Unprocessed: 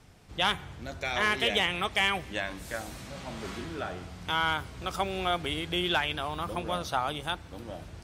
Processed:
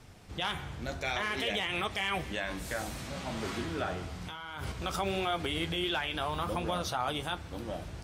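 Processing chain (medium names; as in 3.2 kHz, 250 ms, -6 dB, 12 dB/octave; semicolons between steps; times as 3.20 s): peak limiter -24.5 dBFS, peak gain reduction 10.5 dB; 4.28–4.72 s: compressor with a negative ratio -43 dBFS, ratio -1; flange 0.57 Hz, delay 8 ms, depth 9 ms, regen -55%; trim +6.5 dB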